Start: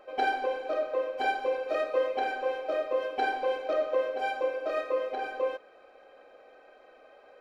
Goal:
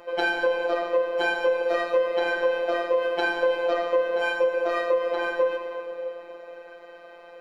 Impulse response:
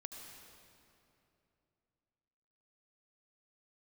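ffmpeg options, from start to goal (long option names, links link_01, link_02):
-filter_complex "[0:a]asplit=2[link_01][link_02];[1:a]atrim=start_sample=2205[link_03];[link_02][link_03]afir=irnorm=-1:irlink=0,volume=6.5dB[link_04];[link_01][link_04]amix=inputs=2:normalize=0,afftfilt=real='hypot(re,im)*cos(PI*b)':imag='0':win_size=1024:overlap=0.75,acrossover=split=180[link_05][link_06];[link_06]acompressor=threshold=-25dB:ratio=6[link_07];[link_05][link_07]amix=inputs=2:normalize=0,volume=5.5dB"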